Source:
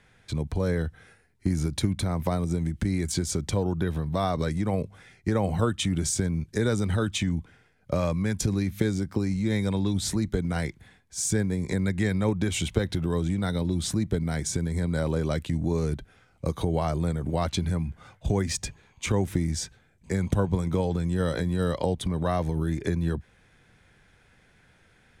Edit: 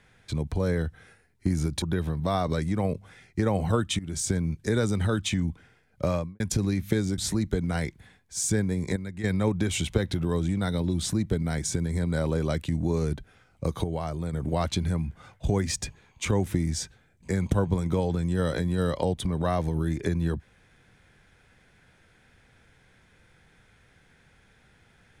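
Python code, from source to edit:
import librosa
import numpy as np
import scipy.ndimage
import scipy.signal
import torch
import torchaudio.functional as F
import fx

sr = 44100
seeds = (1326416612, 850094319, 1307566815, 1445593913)

y = fx.studio_fade_out(x, sr, start_s=7.98, length_s=0.31)
y = fx.edit(y, sr, fx.cut(start_s=1.82, length_s=1.89),
    fx.fade_in_from(start_s=5.88, length_s=0.31, floor_db=-17.5),
    fx.cut(start_s=9.07, length_s=0.92),
    fx.clip_gain(start_s=11.77, length_s=0.28, db=-10.0),
    fx.clip_gain(start_s=16.65, length_s=0.49, db=-5.0), tone=tone)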